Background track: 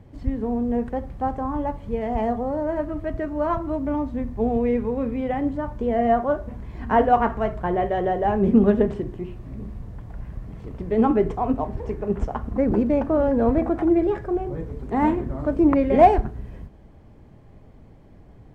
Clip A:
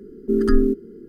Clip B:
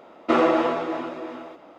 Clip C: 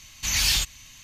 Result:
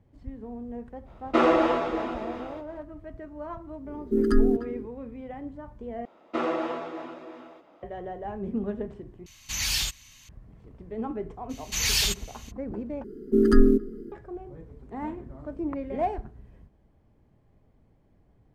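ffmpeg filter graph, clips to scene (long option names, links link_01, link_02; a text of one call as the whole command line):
ffmpeg -i bed.wav -i cue0.wav -i cue1.wav -i cue2.wav -filter_complex "[2:a]asplit=2[link_01][link_02];[1:a]asplit=2[link_03][link_04];[3:a]asplit=2[link_05][link_06];[0:a]volume=-14dB[link_07];[link_01]agate=range=-33dB:threshold=-44dB:ratio=3:release=100:detection=peak[link_08];[link_03]asplit=2[link_09][link_10];[link_10]adelay=300,highpass=300,lowpass=3400,asoftclip=type=hard:threshold=-13.5dB,volume=-13dB[link_11];[link_09][link_11]amix=inputs=2:normalize=0[link_12];[link_04]asplit=2[link_13][link_14];[link_14]adelay=136,lowpass=frequency=2000:poles=1,volume=-22.5dB,asplit=2[link_15][link_16];[link_16]adelay=136,lowpass=frequency=2000:poles=1,volume=0.45,asplit=2[link_17][link_18];[link_18]adelay=136,lowpass=frequency=2000:poles=1,volume=0.45[link_19];[link_13][link_15][link_17][link_19]amix=inputs=4:normalize=0[link_20];[link_07]asplit=4[link_21][link_22][link_23][link_24];[link_21]atrim=end=6.054[link_25];[link_02]atrim=end=1.78,asetpts=PTS-STARTPTS,volume=-9dB[link_26];[link_22]atrim=start=7.826:end=9.264[link_27];[link_05]atrim=end=1.03,asetpts=PTS-STARTPTS,volume=-5dB[link_28];[link_23]atrim=start=10.286:end=13.044[link_29];[link_20]atrim=end=1.08,asetpts=PTS-STARTPTS,volume=-0.5dB[link_30];[link_24]atrim=start=14.116[link_31];[link_08]atrim=end=1.78,asetpts=PTS-STARTPTS,volume=-1.5dB,afade=type=in:duration=0.004:curve=hsin,afade=type=out:start_time=1.776:duration=0.004:curve=hsin,adelay=1050[link_32];[link_12]atrim=end=1.08,asetpts=PTS-STARTPTS,volume=-4dB,afade=type=in:duration=0.1,afade=type=out:start_time=0.98:duration=0.1,adelay=3830[link_33];[link_06]atrim=end=1.03,asetpts=PTS-STARTPTS,volume=-2dB,afade=type=in:duration=0.02,afade=type=out:start_time=1.01:duration=0.02,adelay=11490[link_34];[link_25][link_26]acrossfade=duration=0.004:curve1=hsin:curve2=hsin[link_35];[link_35][link_27]acrossfade=duration=0.004:curve1=hsin:curve2=hsin[link_36];[link_36][link_28]acrossfade=duration=0.004:curve1=hsin:curve2=hsin[link_37];[link_37][link_29]acrossfade=duration=0.004:curve1=hsin:curve2=hsin[link_38];[link_38][link_30]acrossfade=duration=0.004:curve1=hsin:curve2=hsin[link_39];[link_39][link_31]acrossfade=duration=0.004:curve1=hsin:curve2=hsin[link_40];[link_40][link_32][link_33][link_34]amix=inputs=4:normalize=0" out.wav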